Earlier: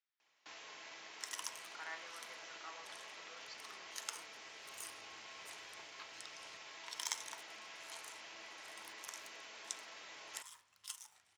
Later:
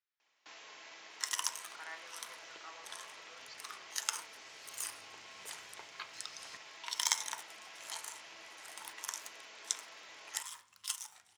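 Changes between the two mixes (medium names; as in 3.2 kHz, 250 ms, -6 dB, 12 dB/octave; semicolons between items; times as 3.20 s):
second sound +9.0 dB; master: add bass shelf 120 Hz -8.5 dB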